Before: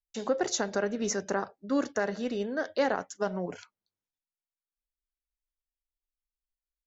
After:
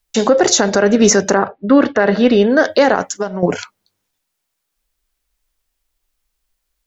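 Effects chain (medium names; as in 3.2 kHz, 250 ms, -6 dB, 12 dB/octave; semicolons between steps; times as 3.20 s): 1.37–2.48 s: low-pass 2.7 kHz -> 4.9 kHz 24 dB/octave; 3.02–3.43 s: compression 4:1, threshold -41 dBFS, peak gain reduction 14.5 dB; loudness maximiser +22 dB; trim -1 dB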